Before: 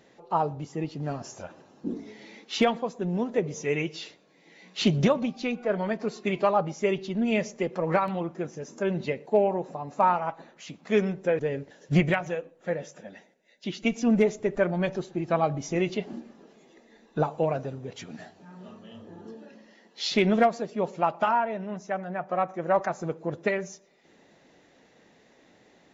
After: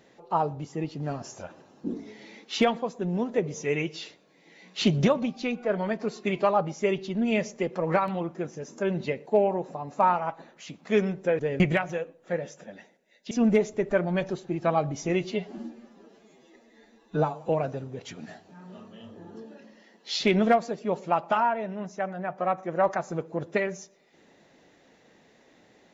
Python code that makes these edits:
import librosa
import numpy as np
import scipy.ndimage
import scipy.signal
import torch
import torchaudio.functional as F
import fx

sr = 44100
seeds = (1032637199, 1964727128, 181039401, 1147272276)

y = fx.edit(x, sr, fx.cut(start_s=11.6, length_s=0.37),
    fx.cut(start_s=13.68, length_s=0.29),
    fx.stretch_span(start_s=15.9, length_s=1.5, factor=1.5), tone=tone)